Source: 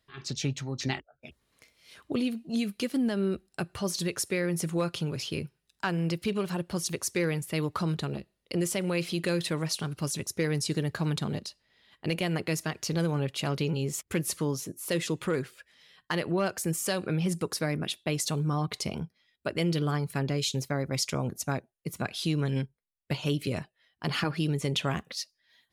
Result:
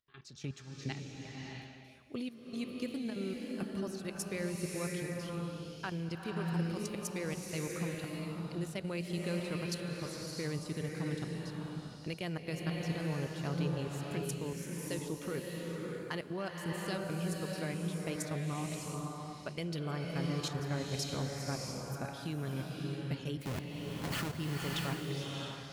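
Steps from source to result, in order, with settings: 23.41–24.36 s: square wave that keeps the level; level held to a coarse grid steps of 15 dB; swelling reverb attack 660 ms, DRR -0.5 dB; trim -7.5 dB

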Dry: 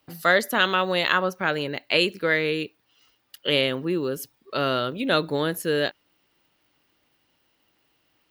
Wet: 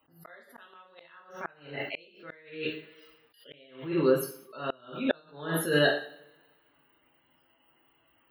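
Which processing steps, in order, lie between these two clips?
peaking EQ 1.1 kHz +5 dB 1.8 oct; loudest bins only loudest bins 64; two-slope reverb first 0.49 s, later 1.6 s, from -26 dB, DRR -2.5 dB; inverted gate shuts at -7 dBFS, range -36 dB; attacks held to a fixed rise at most 110 dB/s; trim -3.5 dB

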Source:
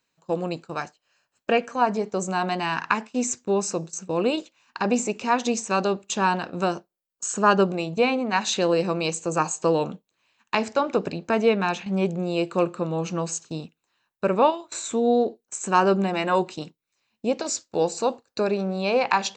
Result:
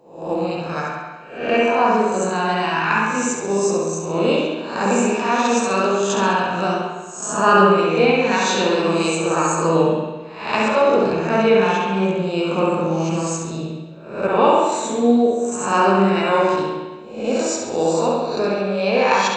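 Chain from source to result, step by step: reverse spectral sustain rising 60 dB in 0.57 s; on a send: flutter echo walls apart 11.6 m, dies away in 0.65 s; on the sum: spring tank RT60 1.2 s, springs 46/55 ms, chirp 65 ms, DRR -2.5 dB; trim -1 dB

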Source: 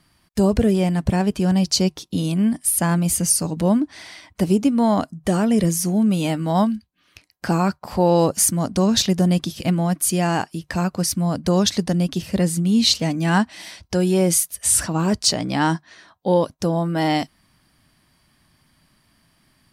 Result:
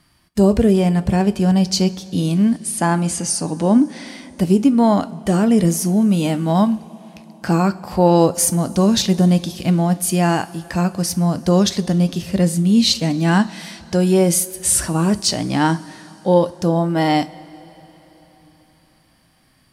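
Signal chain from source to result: 2.59–4.07 s: cabinet simulation 110–9000 Hz, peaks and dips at 180 Hz -4 dB, 260 Hz +4 dB, 420 Hz +3 dB, 820 Hz +5 dB; harmonic-percussive split harmonic +5 dB; two-slope reverb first 0.29 s, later 4.1 s, from -18 dB, DRR 12 dB; trim -1 dB

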